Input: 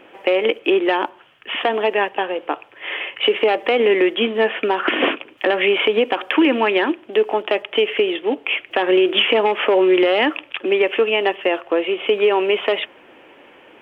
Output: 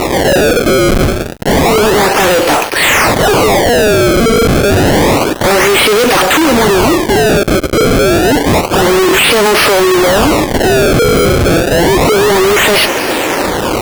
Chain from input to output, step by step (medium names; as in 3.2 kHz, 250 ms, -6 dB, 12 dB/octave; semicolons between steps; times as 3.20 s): decimation with a swept rate 27×, swing 160% 0.29 Hz; 7.33–7.84 s: level held to a coarse grid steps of 18 dB; fuzz box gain 45 dB, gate -54 dBFS; trim +5.5 dB